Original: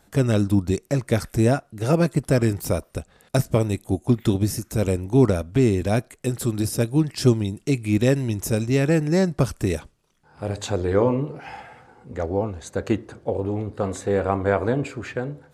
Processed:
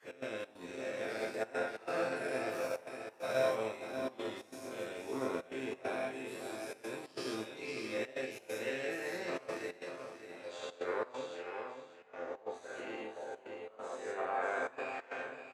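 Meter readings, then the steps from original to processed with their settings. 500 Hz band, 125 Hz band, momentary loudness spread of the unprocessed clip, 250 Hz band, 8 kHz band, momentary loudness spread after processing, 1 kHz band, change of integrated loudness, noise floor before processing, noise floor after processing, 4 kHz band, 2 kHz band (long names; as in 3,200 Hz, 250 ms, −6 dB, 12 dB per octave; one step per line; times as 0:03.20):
−13.5 dB, −36.0 dB, 10 LU, −23.0 dB, −18.5 dB, 10 LU, −9.5 dB, −17.0 dB, −60 dBFS, −58 dBFS, −11.5 dB, −7.0 dB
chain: every bin's largest magnitude spread in time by 240 ms
high-pass filter 440 Hz 12 dB per octave
high-shelf EQ 11,000 Hz −10.5 dB
resonators tuned to a chord F2 major, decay 0.41 s
repeating echo 589 ms, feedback 33%, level −5.5 dB
gate pattern "x.xx.xxxxxxx" 136 BPM −12 dB
drawn EQ curve 840 Hz 0 dB, 2,300 Hz +5 dB, 6,600 Hz −5 dB
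echo with shifted repeats 128 ms, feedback 62%, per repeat +110 Hz, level −20 dB
expander for the loud parts 1.5 to 1, over −45 dBFS
level −2.5 dB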